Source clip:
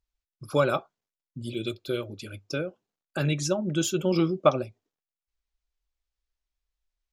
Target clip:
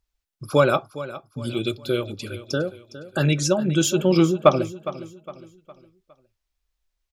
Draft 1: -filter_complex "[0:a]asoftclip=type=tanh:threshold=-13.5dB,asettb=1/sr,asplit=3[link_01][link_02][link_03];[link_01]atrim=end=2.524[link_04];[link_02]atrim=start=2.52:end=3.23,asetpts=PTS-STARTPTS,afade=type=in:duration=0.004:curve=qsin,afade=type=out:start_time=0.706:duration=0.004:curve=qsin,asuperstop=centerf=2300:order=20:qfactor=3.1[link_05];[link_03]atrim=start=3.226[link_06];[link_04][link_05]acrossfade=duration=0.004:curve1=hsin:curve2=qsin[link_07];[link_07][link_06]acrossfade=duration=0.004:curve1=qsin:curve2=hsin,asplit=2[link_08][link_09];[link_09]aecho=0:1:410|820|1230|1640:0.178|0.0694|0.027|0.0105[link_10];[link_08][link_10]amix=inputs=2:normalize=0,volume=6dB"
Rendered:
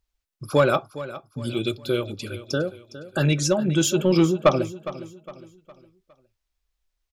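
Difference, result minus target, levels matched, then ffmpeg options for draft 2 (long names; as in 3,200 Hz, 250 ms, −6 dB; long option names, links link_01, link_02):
soft clipping: distortion +15 dB
-filter_complex "[0:a]asoftclip=type=tanh:threshold=-3dB,asettb=1/sr,asplit=3[link_01][link_02][link_03];[link_01]atrim=end=2.524[link_04];[link_02]atrim=start=2.52:end=3.23,asetpts=PTS-STARTPTS,afade=type=in:duration=0.004:curve=qsin,afade=type=out:start_time=0.706:duration=0.004:curve=qsin,asuperstop=centerf=2300:order=20:qfactor=3.1[link_05];[link_03]atrim=start=3.226[link_06];[link_04][link_05]acrossfade=duration=0.004:curve1=hsin:curve2=qsin[link_07];[link_07][link_06]acrossfade=duration=0.004:curve1=qsin:curve2=hsin,asplit=2[link_08][link_09];[link_09]aecho=0:1:410|820|1230|1640:0.178|0.0694|0.027|0.0105[link_10];[link_08][link_10]amix=inputs=2:normalize=0,volume=6dB"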